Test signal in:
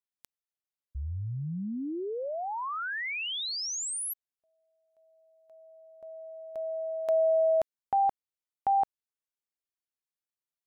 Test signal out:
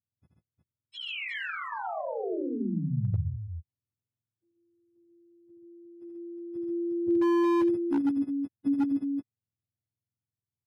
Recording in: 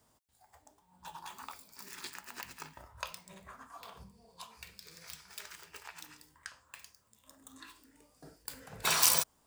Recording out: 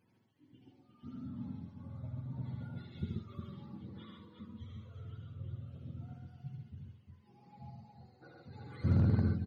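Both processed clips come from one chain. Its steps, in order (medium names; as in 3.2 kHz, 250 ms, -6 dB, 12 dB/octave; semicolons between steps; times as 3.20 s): spectrum inverted on a logarithmic axis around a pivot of 470 Hz; multi-tap echo 77/132/150/359 ms -4/-3/-14/-6 dB; wavefolder -20 dBFS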